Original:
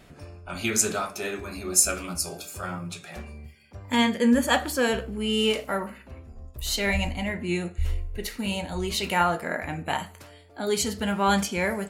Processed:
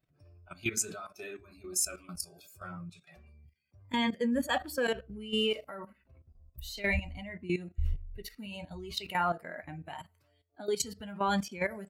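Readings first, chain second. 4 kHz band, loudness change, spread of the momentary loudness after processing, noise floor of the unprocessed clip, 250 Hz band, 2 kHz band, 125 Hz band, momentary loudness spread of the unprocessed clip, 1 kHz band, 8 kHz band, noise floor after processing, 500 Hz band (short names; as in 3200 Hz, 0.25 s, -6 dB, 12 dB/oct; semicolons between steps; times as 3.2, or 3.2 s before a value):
-8.0 dB, -8.0 dB, 15 LU, -50 dBFS, -9.0 dB, -7.5 dB, -8.0 dB, 19 LU, -8.0 dB, -10.0 dB, -71 dBFS, -7.5 dB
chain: per-bin expansion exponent 1.5; level quantiser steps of 14 dB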